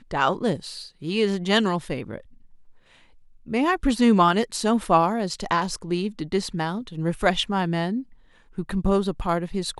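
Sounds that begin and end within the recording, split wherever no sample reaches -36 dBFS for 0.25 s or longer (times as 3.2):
3.47–8.03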